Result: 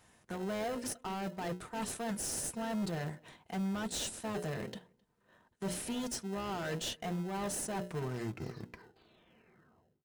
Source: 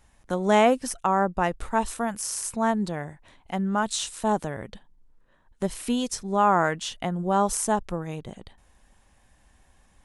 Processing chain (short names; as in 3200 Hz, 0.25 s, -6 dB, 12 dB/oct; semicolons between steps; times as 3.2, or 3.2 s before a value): tape stop at the end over 2.45 s; HPF 150 Hz 12 dB/oct; notches 60/120/180/240/300/360/420/480/540/600 Hz; reverse; compressor 6:1, threshold -31 dBFS, peak gain reduction 15.5 dB; reverse; hard clip -35 dBFS, distortion -8 dB; notch comb 280 Hz; in parallel at -8 dB: sample-and-hold 38×; on the sum: outdoor echo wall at 45 m, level -29 dB; gain +1 dB